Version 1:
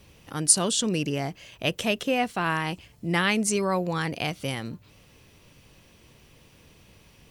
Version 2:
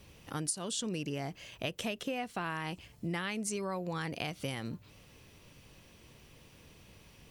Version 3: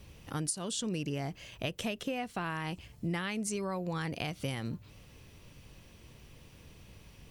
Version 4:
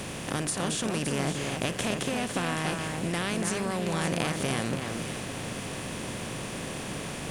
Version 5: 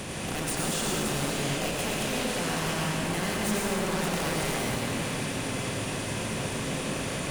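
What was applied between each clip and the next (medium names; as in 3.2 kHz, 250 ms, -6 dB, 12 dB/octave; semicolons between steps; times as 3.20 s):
compression 8:1, threshold -30 dBFS, peak gain reduction 17 dB; trim -2.5 dB
bass shelf 130 Hz +7.5 dB
spectral levelling over time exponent 0.4; echo whose repeats swap between lows and highs 284 ms, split 2.1 kHz, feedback 57%, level -4 dB
wavefolder -27 dBFS; reverberation RT60 1.6 s, pre-delay 78 ms, DRR -2 dB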